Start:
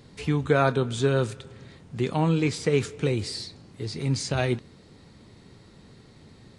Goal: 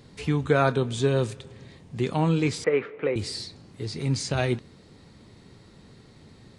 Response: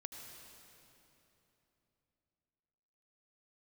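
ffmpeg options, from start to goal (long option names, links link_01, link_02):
-filter_complex "[0:a]asettb=1/sr,asplit=3[link_01][link_02][link_03];[link_01]atrim=end=0.784[link_04];[link_02]atrim=start=0.78:end=2.01,asetpts=PTS-STARTPTS,afade=type=in:duration=0.004:curve=qsin,afade=type=out:start_time=1.226:duration=0.004:curve=qsin,bandreject=frequency=1400:width=5.5[link_05];[link_03]atrim=start=2.006[link_06];[link_04][link_05]acrossfade=duration=0.004:curve1=hsin:curve2=qsin[link_07];[link_07][link_06]acrossfade=duration=0.004:curve1=qsin:curve2=hsin,asettb=1/sr,asplit=3[link_08][link_09][link_10];[link_08]atrim=end=2.644[link_11];[link_09]atrim=start=2.64:end=3.16,asetpts=PTS-STARTPTS,afade=type=in:duration=0.004:curve=qsin,afade=type=out:start_time=0.516:duration=0.004:curve=qsin,highpass=320,equalizer=frequency=550:width_type=q:width=4:gain=7,equalizer=frequency=1200:width_type=q:width=4:gain=4,equalizer=frequency=2000:width_type=q:width=4:gain=5,lowpass=frequency=2400:width=0.5412,lowpass=frequency=2400:width=1.3066[link_12];[link_10]atrim=start=3.156[link_13];[link_11][link_12]acrossfade=duration=0.004:curve1=hsin:curve2=qsin[link_14];[link_14][link_13]acrossfade=duration=0.004:curve1=qsin:curve2=hsin"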